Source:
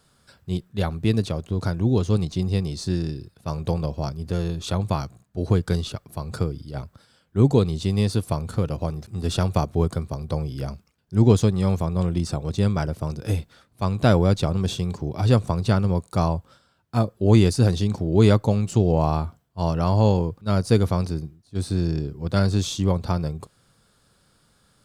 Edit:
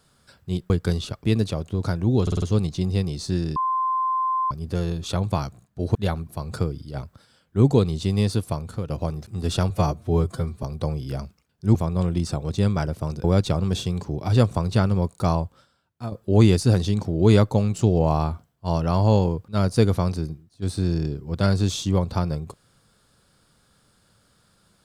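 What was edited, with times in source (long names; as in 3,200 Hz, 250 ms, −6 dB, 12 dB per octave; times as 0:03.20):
0:00.70–0:01.02: swap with 0:05.53–0:06.07
0:02.00: stutter 0.05 s, 5 plays
0:03.14–0:04.09: beep over 1,040 Hz −20 dBFS
0:08.11–0:08.69: fade out, to −7.5 dB
0:09.50–0:10.12: time-stretch 1.5×
0:11.24–0:11.75: remove
0:13.24–0:14.17: remove
0:16.27–0:17.05: fade out, to −12.5 dB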